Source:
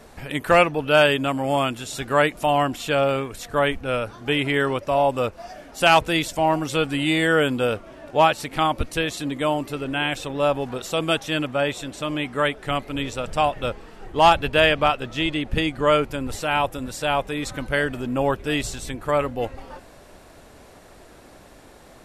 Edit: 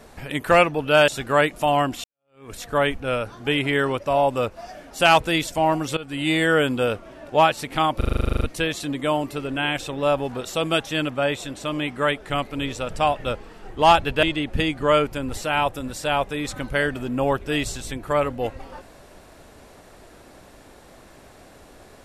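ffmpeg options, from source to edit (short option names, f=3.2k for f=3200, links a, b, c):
-filter_complex "[0:a]asplit=16[a][b][c][d][e][f][g][h][i][j][k][l][m][n][o][p];[a]atrim=end=1.082[q];[b]atrim=start=1.888:end=2.85,asetpts=PTS-STARTPTS,afade=t=out:st=0.958:d=0.004:c=hsin[r];[c]atrim=start=2.85:end=6.78,asetpts=PTS-STARTPTS,afade=t=in:d=0.46:c=exp,afade=t=out:st=3.926:d=0.004:c=hsin:silence=0.112202[s];[d]atrim=start=6.78:end=8.822,asetpts=PTS-STARTPTS,afade=t=in:d=0.35:silence=0.112202[t];[e]atrim=start=8.778:end=8.822[u];[f]atrim=start=8.778:end=8.822[v];[g]atrim=start=8.778:end=8.822[w];[h]atrim=start=8.778:end=8.822[x];[i]atrim=start=8.778:end=8.822[y];[j]atrim=start=8.778:end=8.822[z];[k]atrim=start=8.778:end=8.822[aa];[l]atrim=start=8.778:end=8.822[ab];[m]atrim=start=8.778:end=8.822[ac];[n]atrim=start=8.778:end=8.822[ad];[o]atrim=start=8.778:end=14.602[ae];[p]atrim=start=15.208[af];[r][s][t]concat=n=3:v=0:a=1[ag];[q][ag]acrossfade=d=0.004:c1=hsin:c2=hsin[ah];[ah][u]acrossfade=d=0.004:c1=hsin:c2=hsin[ai];[ai][v]acrossfade=d=0.004:c1=hsin:c2=hsin[aj];[aj][w]acrossfade=d=0.004:c1=hsin:c2=hsin[ak];[ak][x]acrossfade=d=0.004:c1=hsin:c2=hsin[al];[al][y]acrossfade=d=0.004:c1=hsin:c2=hsin[am];[am][z]acrossfade=d=0.004:c1=hsin:c2=hsin[an];[an][aa]acrossfade=d=0.004:c1=hsin:c2=hsin[ao];[ao][ab]acrossfade=d=0.004:c1=hsin:c2=hsin[ap];[ap][ac]acrossfade=d=0.004:c1=hsin:c2=hsin[aq];[aq][ad]acrossfade=d=0.004:c1=hsin:c2=hsin[ar];[ar][ae]acrossfade=d=0.004:c1=hsin:c2=hsin[as];[as][af]acrossfade=d=0.004:c1=hsin:c2=hsin"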